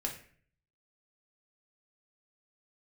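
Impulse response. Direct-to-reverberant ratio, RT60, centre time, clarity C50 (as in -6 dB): 0.0 dB, 0.50 s, 19 ms, 8.0 dB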